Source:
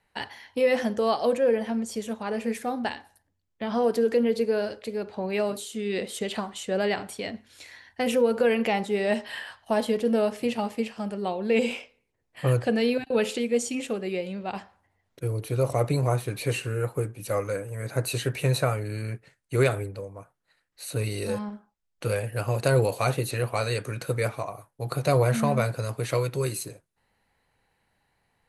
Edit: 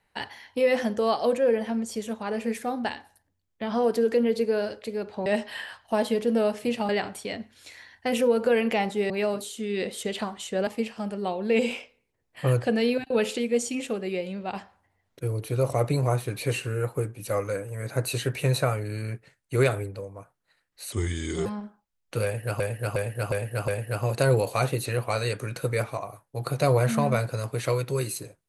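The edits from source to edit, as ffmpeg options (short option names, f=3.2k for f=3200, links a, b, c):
-filter_complex "[0:a]asplit=11[a][b][c][d][e][f][g][h][i][j][k];[a]atrim=end=5.262[l];[b]atrim=start=9.038:end=10.672[m];[c]atrim=start=6.828:end=9.042[n];[d]atrim=start=5.258:end=6.832[o];[e]atrim=start=10.668:end=20.924[p];[f]atrim=start=20.92:end=21.35,asetpts=PTS-STARTPTS,asetrate=35280,aresample=44100[q];[g]atrim=start=21.346:end=22.492[r];[h]atrim=start=22.128:end=22.492[s];[i]atrim=start=22.128:end=22.492[t];[j]atrim=start=22.128:end=22.492[u];[k]atrim=start=22.128[v];[l][m]acrossfade=d=0.004:c1=hsin:c2=hsin[w];[w][n]acrossfade=d=0.004:c1=hsin:c2=hsin[x];[x][o]acrossfade=d=0.004:c1=hsin:c2=hsin[y];[y][p]acrossfade=d=0.004:c1=hsin:c2=hsin[z];[z][q]acrossfade=d=0.004:c1=hsin:c2=hsin[aa];[aa][r]acrossfade=d=0.004:c1=hsin:c2=hsin[ab];[ab][s]acrossfade=d=0.004:c1=hsin:c2=hsin[ac];[ac][t]acrossfade=d=0.004:c1=hsin:c2=hsin[ad];[ad][u]acrossfade=d=0.004:c1=hsin:c2=hsin[ae];[ae][v]acrossfade=d=0.004:c1=hsin:c2=hsin"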